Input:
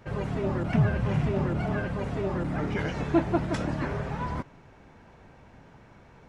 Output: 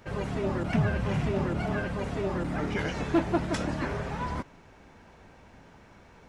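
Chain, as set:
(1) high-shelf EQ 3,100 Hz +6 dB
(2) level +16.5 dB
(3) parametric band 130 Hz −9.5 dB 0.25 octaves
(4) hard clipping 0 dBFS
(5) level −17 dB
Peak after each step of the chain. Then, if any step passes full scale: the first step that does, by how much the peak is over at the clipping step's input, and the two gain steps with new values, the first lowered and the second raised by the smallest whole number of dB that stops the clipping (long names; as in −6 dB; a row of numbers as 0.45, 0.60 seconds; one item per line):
−11.0, +5.5, +5.0, 0.0, −17.0 dBFS
step 2, 5.0 dB
step 2 +11.5 dB, step 5 −12 dB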